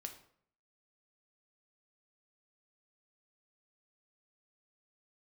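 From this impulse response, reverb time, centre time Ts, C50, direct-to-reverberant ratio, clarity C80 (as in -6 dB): 0.60 s, 13 ms, 10.5 dB, 4.5 dB, 13.5 dB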